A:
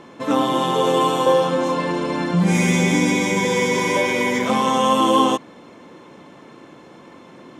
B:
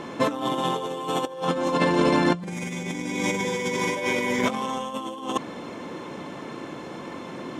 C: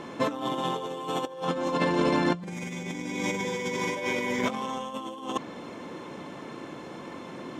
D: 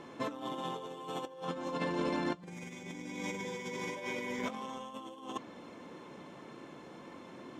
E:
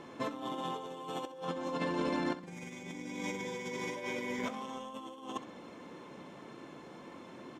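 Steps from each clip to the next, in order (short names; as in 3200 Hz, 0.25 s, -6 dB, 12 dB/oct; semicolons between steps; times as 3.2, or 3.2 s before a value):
negative-ratio compressor -24 dBFS, ratio -0.5
dynamic EQ 9900 Hz, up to -6 dB, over -58 dBFS, Q 2.2; gain -4 dB
flange 0.39 Hz, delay 2.3 ms, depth 3.3 ms, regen -82%; gain -5 dB
feedback echo 65 ms, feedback 36%, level -14 dB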